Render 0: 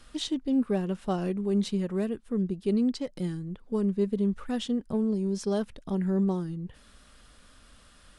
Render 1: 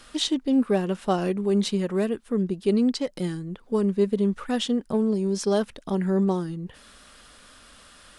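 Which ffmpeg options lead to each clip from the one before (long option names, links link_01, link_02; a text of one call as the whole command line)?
ffmpeg -i in.wav -af "lowshelf=frequency=190:gain=-11,volume=8dB" out.wav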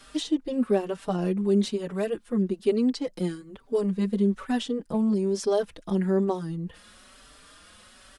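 ffmpeg -i in.wav -filter_complex "[0:a]acrossover=split=660[link_01][link_02];[link_02]alimiter=limit=-23.5dB:level=0:latency=1:release=404[link_03];[link_01][link_03]amix=inputs=2:normalize=0,asplit=2[link_04][link_05];[link_05]adelay=4.7,afreqshift=1.1[link_06];[link_04][link_06]amix=inputs=2:normalize=1,volume=1.5dB" out.wav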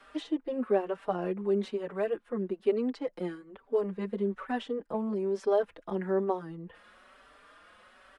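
ffmpeg -i in.wav -filter_complex "[0:a]acrossover=split=350 2500:gain=0.224 1 0.112[link_01][link_02][link_03];[link_01][link_02][link_03]amix=inputs=3:normalize=0" out.wav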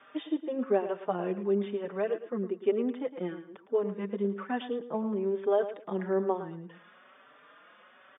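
ffmpeg -i in.wav -af "afftfilt=real='re*between(b*sr/4096,110,3700)':imag='im*between(b*sr/4096,110,3700)':win_size=4096:overlap=0.75,aecho=1:1:110|220|330:0.251|0.0553|0.0122" out.wav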